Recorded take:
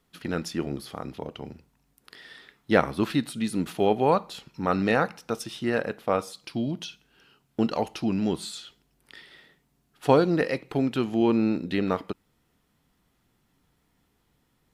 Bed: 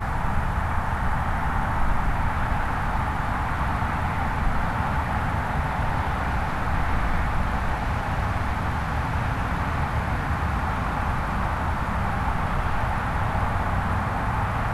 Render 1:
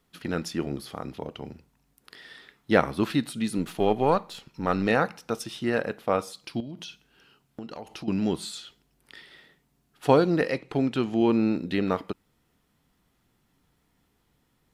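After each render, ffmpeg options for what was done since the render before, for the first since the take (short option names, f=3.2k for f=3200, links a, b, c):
-filter_complex "[0:a]asettb=1/sr,asplit=3[a][b][c];[a]atrim=end=3.584[d];[b]atrim=start=3.58:end=4.87,asetpts=PTS-STARTPTS,afade=t=in:d=0.004:c=qsin,afade=t=out:st=1.286:d=0.004:c=qsin,aeval=exprs='if(lt(val(0),0),0.708*val(0),val(0))':c=same[e];[c]atrim=start=4.866[f];[d][e]acrossfade=d=0.004:c1=hsin:c2=qsin[g];[g][f]acrossfade=d=0.004:c1=qsin:c2=hsin,asettb=1/sr,asplit=3[h][i][j];[h]atrim=end=6.604[k];[i]atrim=start=6.6:end=8.08,asetpts=PTS-STARTPTS,afade=t=in:d=0.004:c=qsin,afade=t=out:st=1.476:d=0.004:c=qsin,acompressor=threshold=-35dB:ratio=6:attack=3.2:release=140:knee=1:detection=peak[l];[j]atrim=start=8.076[m];[k][l]acrossfade=d=0.004:c1=hsin:c2=qsin[n];[n][m]acrossfade=d=0.004:c1=qsin:c2=hsin,asettb=1/sr,asplit=3[o][p][q];[o]atrim=end=10.524[r];[p]atrim=start=10.52:end=11.19,asetpts=PTS-STARTPTS,afade=t=in:d=0.004:c=qsin,afade=t=out:st=0.666:d=0.004:c=qsin,lowpass=9.2k[s];[q]atrim=start=11.186[t];[r][s]acrossfade=d=0.004:c1=hsin:c2=qsin[u];[u][t]acrossfade=d=0.004:c1=qsin:c2=hsin"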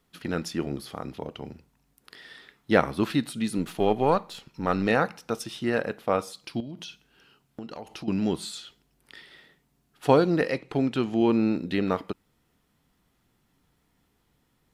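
-af anull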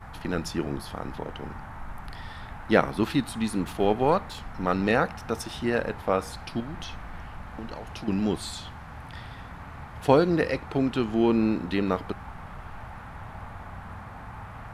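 -filter_complex "[1:a]volume=-16dB[a];[0:a][a]amix=inputs=2:normalize=0"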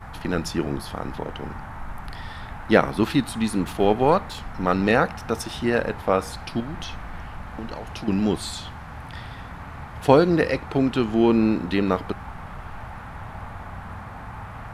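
-af "volume=4dB,alimiter=limit=-1dB:level=0:latency=1"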